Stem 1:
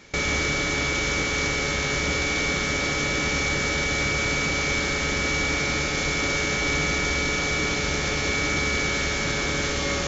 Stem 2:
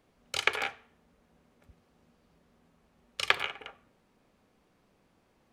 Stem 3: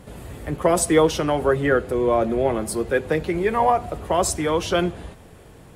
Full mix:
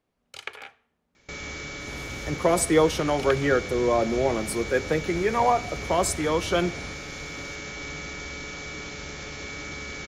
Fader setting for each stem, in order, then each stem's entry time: −12.0, −9.5, −3.0 decibels; 1.15, 0.00, 1.80 seconds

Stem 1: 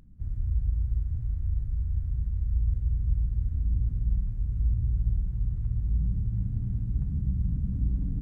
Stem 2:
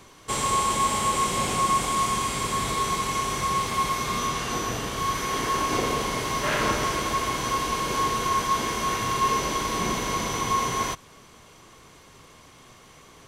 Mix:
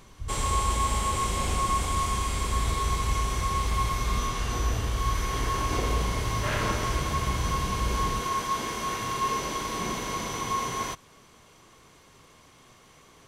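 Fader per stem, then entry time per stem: −2.5, −4.5 decibels; 0.00, 0.00 seconds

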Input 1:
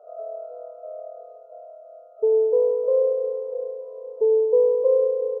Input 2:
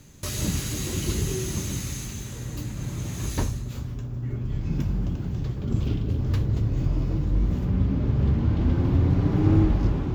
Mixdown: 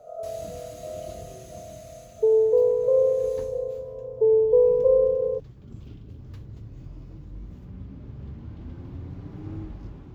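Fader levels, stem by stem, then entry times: 0.0, −17.0 decibels; 0.00, 0.00 seconds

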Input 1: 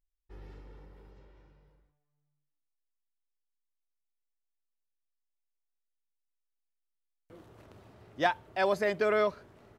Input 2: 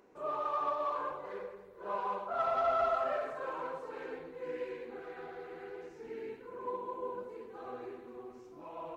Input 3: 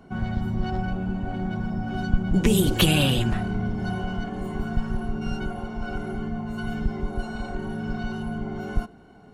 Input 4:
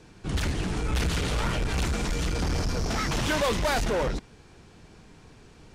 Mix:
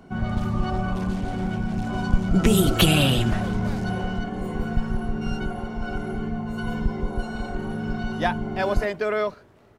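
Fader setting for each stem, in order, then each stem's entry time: +2.5, −4.5, +1.5, −15.0 decibels; 0.00, 0.00, 0.00, 0.00 seconds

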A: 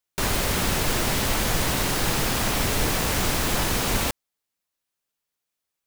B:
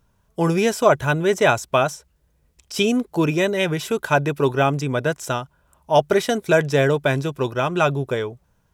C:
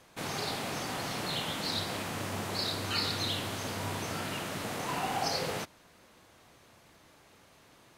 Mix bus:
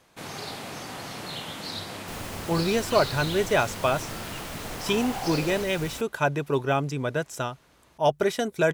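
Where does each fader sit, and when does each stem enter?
−16.0, −6.0, −1.5 decibels; 1.90, 2.10, 0.00 seconds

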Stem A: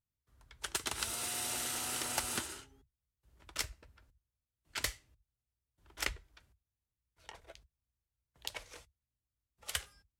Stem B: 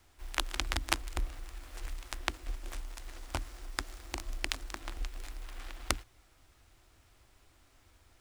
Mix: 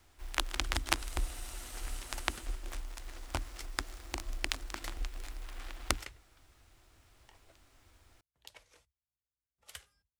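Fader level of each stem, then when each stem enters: −11.5, 0.0 decibels; 0.00, 0.00 seconds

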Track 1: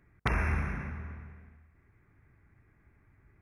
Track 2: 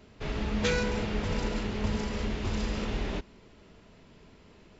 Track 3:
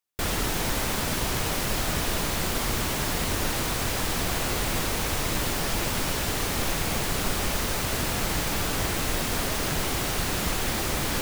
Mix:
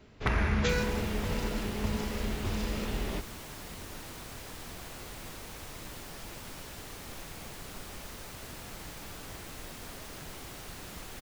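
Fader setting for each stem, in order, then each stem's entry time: 0.0, −2.0, −17.0 decibels; 0.00, 0.00, 0.50 seconds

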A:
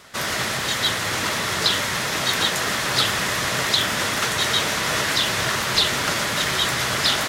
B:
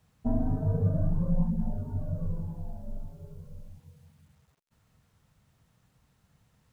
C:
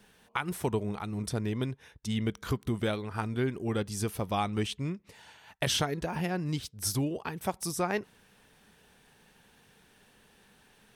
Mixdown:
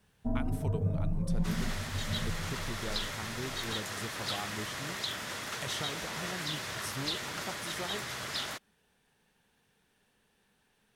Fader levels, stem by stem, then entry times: −16.0, −4.5, −10.5 decibels; 1.30, 0.00, 0.00 seconds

